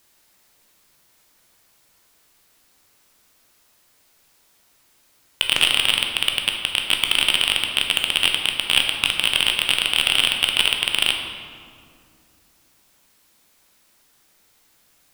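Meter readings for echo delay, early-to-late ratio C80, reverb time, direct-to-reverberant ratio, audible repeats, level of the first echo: no echo audible, 5.5 dB, 2.4 s, 2.0 dB, no echo audible, no echo audible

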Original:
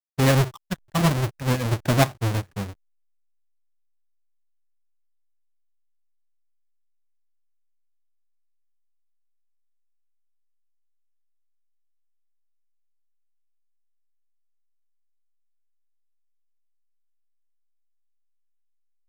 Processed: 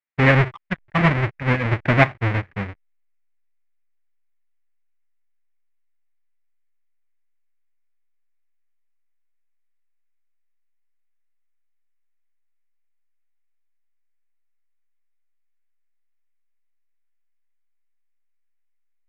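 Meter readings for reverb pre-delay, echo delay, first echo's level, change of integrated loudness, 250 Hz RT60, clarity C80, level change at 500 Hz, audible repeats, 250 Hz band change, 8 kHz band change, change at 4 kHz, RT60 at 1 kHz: no reverb audible, no echo audible, no echo audible, +3.5 dB, no reverb audible, no reverb audible, +2.5 dB, no echo audible, +2.0 dB, below −15 dB, −2.5 dB, no reverb audible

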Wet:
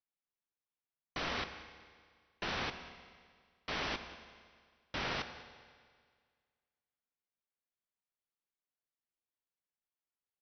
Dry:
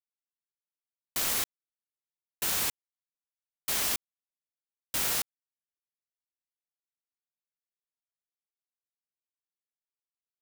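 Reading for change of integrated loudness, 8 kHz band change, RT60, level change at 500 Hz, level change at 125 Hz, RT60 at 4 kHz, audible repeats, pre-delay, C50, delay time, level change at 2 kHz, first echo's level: −10.5 dB, −25.0 dB, 1.9 s, +1.0 dB, +1.5 dB, 1.8 s, 1, 13 ms, 10.5 dB, 188 ms, −1.5 dB, −18.5 dB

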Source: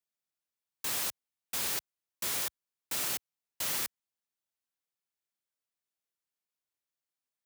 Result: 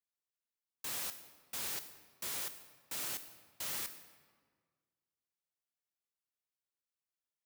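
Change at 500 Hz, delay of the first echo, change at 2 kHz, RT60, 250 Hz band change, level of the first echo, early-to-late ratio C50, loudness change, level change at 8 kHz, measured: −6.5 dB, no echo audible, −6.5 dB, 1.7 s, −6.5 dB, no echo audible, 12.5 dB, −6.5 dB, −6.5 dB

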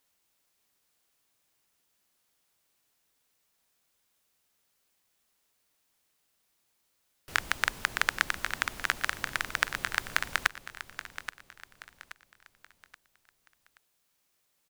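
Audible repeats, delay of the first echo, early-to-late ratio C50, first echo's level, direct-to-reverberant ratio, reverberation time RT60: 3, 827 ms, no reverb audible, −12.0 dB, no reverb audible, no reverb audible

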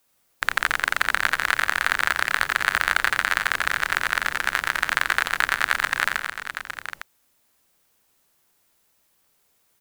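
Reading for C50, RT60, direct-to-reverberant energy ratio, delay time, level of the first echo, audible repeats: no reverb audible, no reverb audible, no reverb audible, 87 ms, −5.0 dB, 6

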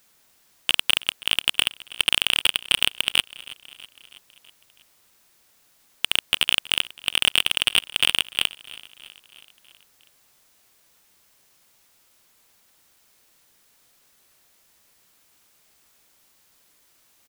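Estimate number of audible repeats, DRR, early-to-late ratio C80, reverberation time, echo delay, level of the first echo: 4, no reverb audible, no reverb audible, no reverb audible, 324 ms, −20.0 dB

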